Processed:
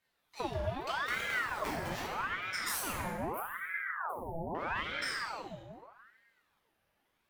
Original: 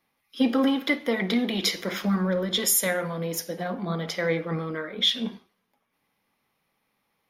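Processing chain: half-wave gain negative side -12 dB; 1.01–1.89 sample-rate reducer 3300 Hz; small resonant body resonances 270/1300/2700 Hz, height 8 dB; compressor 6:1, threshold -30 dBFS, peak gain reduction 15 dB; 3.05–4.55 inverse Chebyshev band-stop 1000–6300 Hz, stop band 50 dB; plate-style reverb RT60 1.7 s, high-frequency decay 0.55×, DRR -5.5 dB; ring modulator with a swept carrier 1100 Hz, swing 70%, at 0.8 Hz; gain -4.5 dB

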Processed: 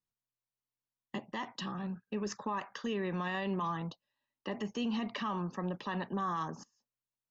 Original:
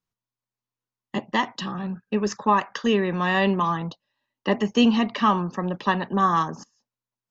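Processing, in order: limiter -18.5 dBFS, peak gain reduction 10 dB; gain -8.5 dB

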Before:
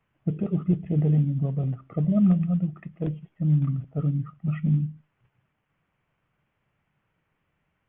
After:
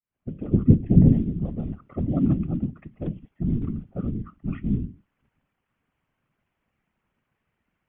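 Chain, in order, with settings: opening faded in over 0.62 s; 0.46–1.13 bell 150 Hz +10 dB 2.7 oct; whisperiser; gain -2.5 dB

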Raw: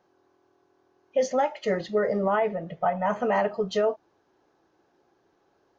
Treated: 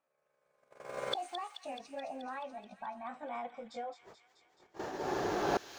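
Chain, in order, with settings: gliding pitch shift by +7.5 st ending unshifted; recorder AGC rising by 17 dB/s; gate -52 dBFS, range -28 dB; bell 670 Hz +4.5 dB 0.31 oct; flipped gate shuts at -31 dBFS, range -29 dB; on a send: thin delay 0.215 s, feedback 70%, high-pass 2700 Hz, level -7 dB; on the sum: gain +11 dB

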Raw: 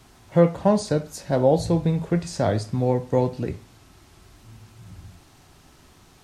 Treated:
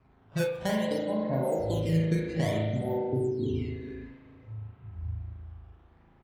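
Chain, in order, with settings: switching dead time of 0.12 ms; HPF 76 Hz 6 dB/oct; air absorption 310 m; notches 60/120/180/240/300/360/420/480 Hz; on a send: feedback echo 0.422 s, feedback 25%, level -11.5 dB; on the sum: spectral repair 3.08–4.08, 440–4500 Hz after; decimation with a swept rate 12×, swing 160% 0.58 Hz; low-pass opened by the level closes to 2700 Hz, open at -17 dBFS; low shelf 120 Hz +6.5 dB; compressor 6:1, threshold -28 dBFS, peak gain reduction 16 dB; spring tank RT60 1.8 s, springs 37 ms, chirp 25 ms, DRR -3.5 dB; spectral noise reduction 11 dB

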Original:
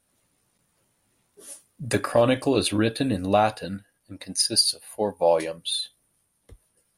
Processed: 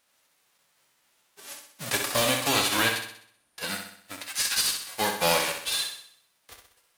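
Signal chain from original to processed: spectral whitening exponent 0.3; 1.95–2.38 bell 1500 Hz -6 dB 2 oct; 2.99–3.58 room tone; 4.22–4.87 HPF 990 Hz 24 dB/oct; overdrive pedal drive 14 dB, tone 4500 Hz, clips at -10 dBFS; flutter echo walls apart 10.9 m, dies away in 0.62 s; gain -4.5 dB

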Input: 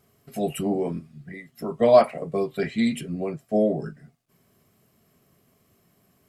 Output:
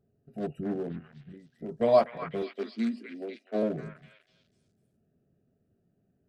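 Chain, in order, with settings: Wiener smoothing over 41 samples; 2.42–3.63 steep high-pass 210 Hz 96 dB/oct; on a send: delay with a stepping band-pass 0.248 s, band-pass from 1700 Hz, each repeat 0.7 oct, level -1 dB; on the sum: gain -6 dB

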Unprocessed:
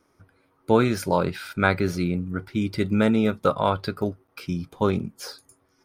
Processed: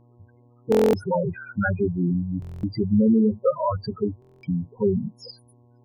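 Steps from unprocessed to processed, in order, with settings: loudest bins only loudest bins 4; buzz 120 Hz, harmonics 9, -60 dBFS -7 dB/oct; stuck buffer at 0.7/2.4/4.2, samples 1024, times 9; gain +4 dB

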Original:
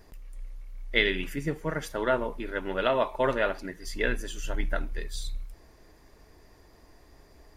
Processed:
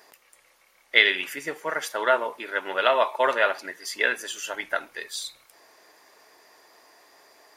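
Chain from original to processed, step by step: HPF 670 Hz 12 dB/oct; gain +7.5 dB

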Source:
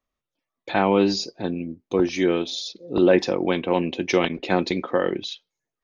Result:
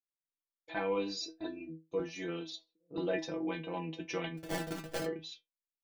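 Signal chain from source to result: 2.55–2.95 Chebyshev low-pass 1400 Hz, order 2; gate -37 dBFS, range -17 dB; 1.2–1.69 comb 3 ms, depth 99%; 4.37–5.05 sample-rate reducer 1100 Hz, jitter 20%; metallic resonator 160 Hz, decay 0.25 s, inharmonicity 0.002; gain -3 dB

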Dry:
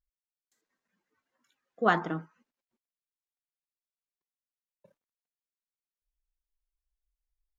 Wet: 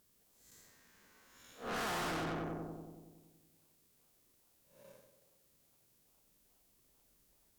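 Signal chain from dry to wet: time blur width 0.211 s; tilt +3 dB/oct; in parallel at -9 dB: decimation with a swept rate 41×, swing 100% 2.4 Hz; on the sum: vibrato 5.2 Hz 21 cents; on a send: darkening echo 93 ms, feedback 70%, low-pass 1300 Hz, level -8 dB; on the sum: tube stage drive 55 dB, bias 0.5; gain +18 dB

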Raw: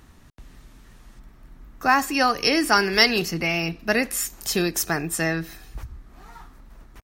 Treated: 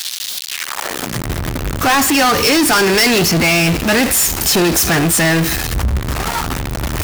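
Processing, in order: zero-crossing step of -24.5 dBFS; high-pass sweep 3800 Hz -> 71 Hz, 0.48–1.29; sample leveller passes 5; gain -6.5 dB

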